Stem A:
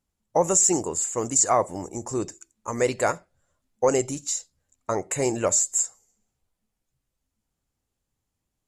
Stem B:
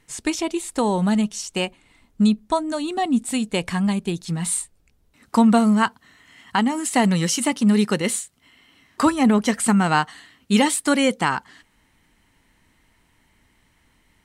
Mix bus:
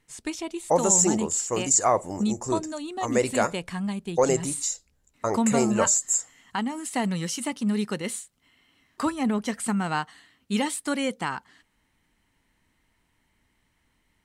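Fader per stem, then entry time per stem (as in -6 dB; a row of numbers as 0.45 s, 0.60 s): -0.5 dB, -8.5 dB; 0.35 s, 0.00 s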